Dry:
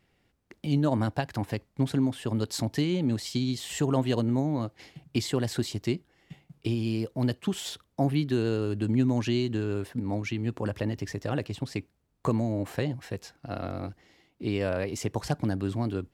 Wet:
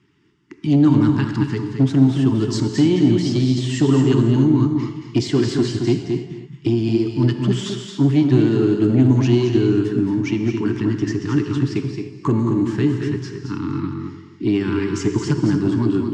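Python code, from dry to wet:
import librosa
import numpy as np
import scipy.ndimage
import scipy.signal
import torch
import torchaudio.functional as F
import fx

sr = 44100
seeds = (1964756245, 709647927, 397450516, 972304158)

p1 = fx.spec_quant(x, sr, step_db=15)
p2 = scipy.signal.sosfilt(scipy.signal.cheby1(5, 1.0, [430.0, 870.0], 'bandstop', fs=sr, output='sos'), p1)
p3 = fx.fold_sine(p2, sr, drive_db=4, ceiling_db=-17.0)
p4 = p2 + (p3 * librosa.db_to_amplitude(-3.0))
p5 = fx.cabinet(p4, sr, low_hz=110.0, low_slope=12, high_hz=6700.0, hz=(130.0, 300.0, 530.0, 2400.0, 4000.0), db=(7, 8, 5, -3, -6))
p6 = p5 + fx.echo_single(p5, sr, ms=221, db=-7.0, dry=0)
y = fx.rev_gated(p6, sr, seeds[0], gate_ms=330, shape='flat', drr_db=6.5)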